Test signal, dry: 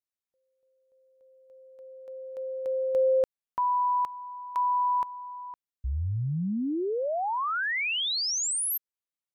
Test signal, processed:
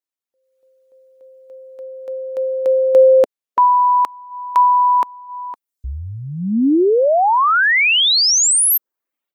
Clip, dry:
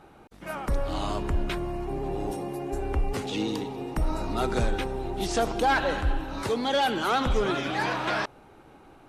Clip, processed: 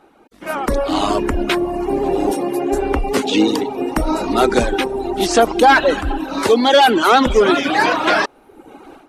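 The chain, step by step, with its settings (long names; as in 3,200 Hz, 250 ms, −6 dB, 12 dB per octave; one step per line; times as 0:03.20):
reverb reduction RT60 0.81 s
low shelf with overshoot 190 Hz −9.5 dB, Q 1.5
automatic gain control gain up to 14 dB
level +1 dB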